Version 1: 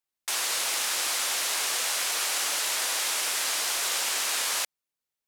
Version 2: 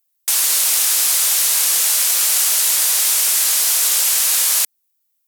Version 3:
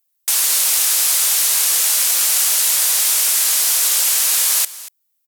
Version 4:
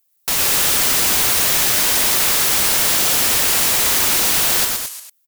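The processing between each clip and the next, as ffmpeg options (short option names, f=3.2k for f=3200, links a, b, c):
-af "highpass=f=250:w=0.5412,highpass=f=250:w=1.3066,aemphasis=mode=production:type=75fm,volume=1.5dB"
-af "aecho=1:1:235:0.133"
-af "aeval=exprs='(mod(7.08*val(0)+1,2)-1)/7.08':c=same,aecho=1:1:113.7|212.8:0.631|0.355,volume=4dB"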